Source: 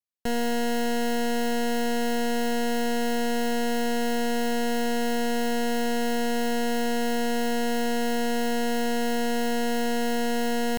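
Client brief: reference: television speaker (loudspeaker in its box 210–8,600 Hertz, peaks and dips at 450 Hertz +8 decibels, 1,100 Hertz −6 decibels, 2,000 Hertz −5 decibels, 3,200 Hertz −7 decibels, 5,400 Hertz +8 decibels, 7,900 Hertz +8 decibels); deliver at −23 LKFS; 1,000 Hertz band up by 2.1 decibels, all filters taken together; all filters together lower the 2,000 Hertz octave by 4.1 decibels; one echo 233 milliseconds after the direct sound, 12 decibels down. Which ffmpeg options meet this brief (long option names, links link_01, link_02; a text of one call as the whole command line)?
ffmpeg -i in.wav -af "highpass=frequency=210:width=0.5412,highpass=frequency=210:width=1.3066,equalizer=frequency=450:width_type=q:width=4:gain=8,equalizer=frequency=1100:width_type=q:width=4:gain=-6,equalizer=frequency=2000:width_type=q:width=4:gain=-5,equalizer=frequency=3200:width_type=q:width=4:gain=-7,equalizer=frequency=5400:width_type=q:width=4:gain=8,equalizer=frequency=7900:width_type=q:width=4:gain=8,lowpass=frequency=8600:width=0.5412,lowpass=frequency=8600:width=1.3066,equalizer=frequency=1000:width_type=o:gain=5,equalizer=frequency=2000:width_type=o:gain=-3.5,aecho=1:1:233:0.251,volume=1.5dB" out.wav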